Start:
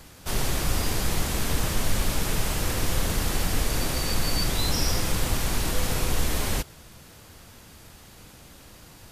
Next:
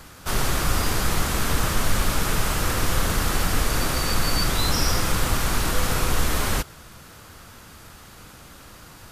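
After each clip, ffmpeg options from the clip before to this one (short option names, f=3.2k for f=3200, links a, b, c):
-af "equalizer=f=1.3k:t=o:w=0.75:g=7,volume=2.5dB"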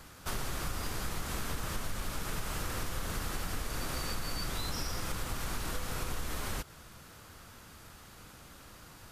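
-af "acompressor=threshold=-24dB:ratio=6,volume=-7.5dB"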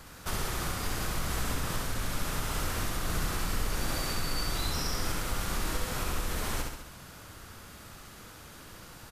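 -af "aecho=1:1:67|134|201|268|335|402|469:0.708|0.382|0.206|0.111|0.0602|0.0325|0.0176,volume=2dB"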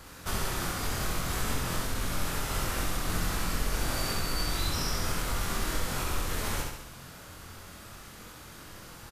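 -filter_complex "[0:a]asplit=2[a][b];[b]adelay=23,volume=-4dB[c];[a][c]amix=inputs=2:normalize=0"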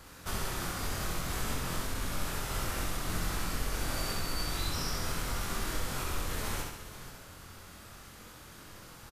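-af "aecho=1:1:478:0.211,volume=-3.5dB"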